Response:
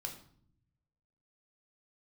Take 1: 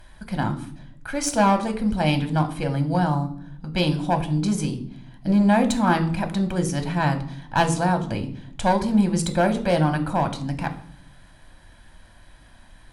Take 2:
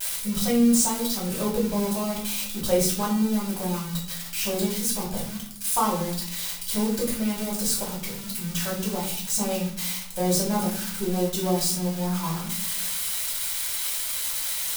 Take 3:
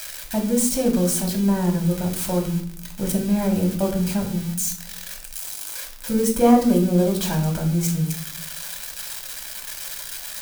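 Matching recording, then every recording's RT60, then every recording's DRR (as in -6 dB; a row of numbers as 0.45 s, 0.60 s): 3; 0.60 s, 0.55 s, 0.60 s; 6.5 dB, -5.5 dB, 1.5 dB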